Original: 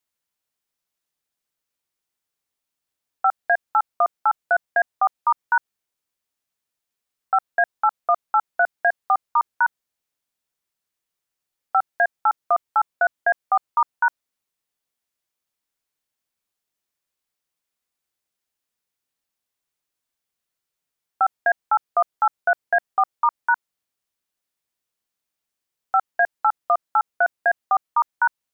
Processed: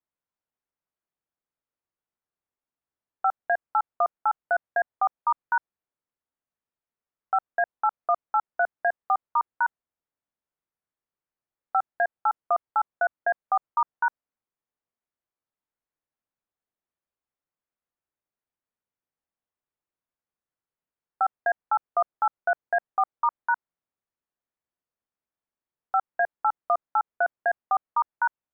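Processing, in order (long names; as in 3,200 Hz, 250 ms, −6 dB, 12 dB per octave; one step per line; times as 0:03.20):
low-pass filter 1,500 Hz 12 dB per octave
level −3.5 dB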